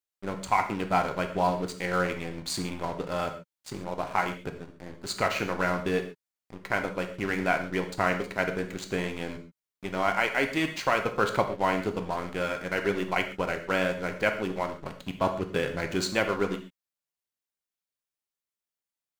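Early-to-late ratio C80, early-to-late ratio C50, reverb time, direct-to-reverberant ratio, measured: 13.0 dB, 9.5 dB, non-exponential decay, 5.5 dB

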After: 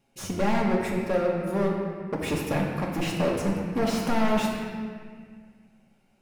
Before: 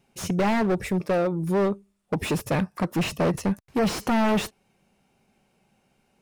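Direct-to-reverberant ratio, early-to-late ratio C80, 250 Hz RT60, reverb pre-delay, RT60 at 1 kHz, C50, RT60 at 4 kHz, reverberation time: −1.5 dB, 3.0 dB, 2.5 s, 4 ms, 1.8 s, 1.5 dB, 1.4 s, 1.9 s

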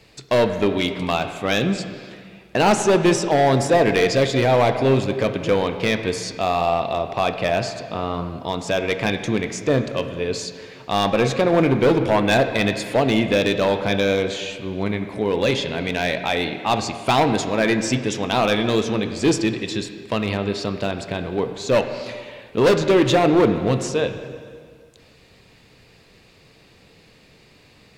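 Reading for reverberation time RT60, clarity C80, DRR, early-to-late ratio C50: 2.0 s, 9.5 dB, 7.0 dB, 8.5 dB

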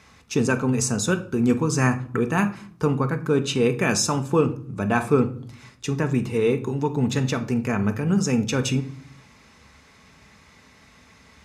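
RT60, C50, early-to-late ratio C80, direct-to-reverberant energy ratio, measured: 0.55 s, 14.5 dB, 19.0 dB, 7.0 dB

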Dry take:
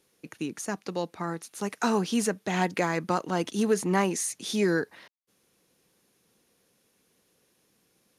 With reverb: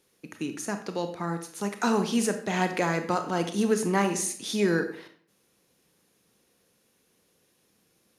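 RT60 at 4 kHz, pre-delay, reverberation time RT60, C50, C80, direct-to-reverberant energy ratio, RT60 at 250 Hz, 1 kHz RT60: 0.45 s, 26 ms, 0.60 s, 10.0 dB, 13.5 dB, 7.0 dB, 0.60 s, 0.55 s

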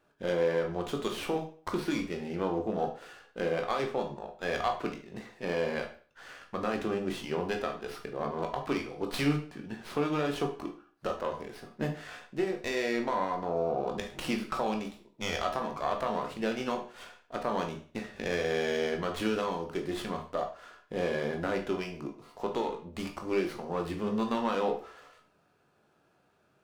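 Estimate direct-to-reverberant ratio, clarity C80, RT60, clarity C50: 3.0 dB, 14.5 dB, 0.45 s, 9.0 dB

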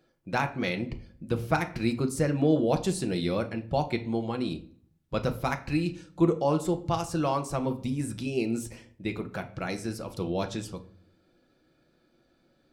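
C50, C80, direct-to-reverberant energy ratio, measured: 15.0 dB, 19.0 dB, 6.0 dB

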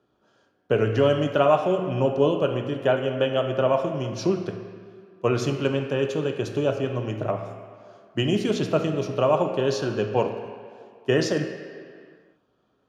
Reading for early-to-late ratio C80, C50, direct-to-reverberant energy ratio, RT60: 8.0 dB, 6.5 dB, 4.0 dB, non-exponential decay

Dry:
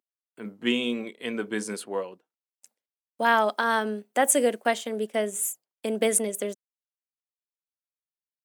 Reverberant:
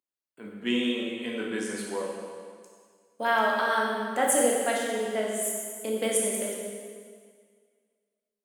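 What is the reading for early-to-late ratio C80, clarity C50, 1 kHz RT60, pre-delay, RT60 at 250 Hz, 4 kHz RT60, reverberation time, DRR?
2.0 dB, 0.5 dB, 1.9 s, 7 ms, 1.9 s, 1.8 s, 1.9 s, −2.5 dB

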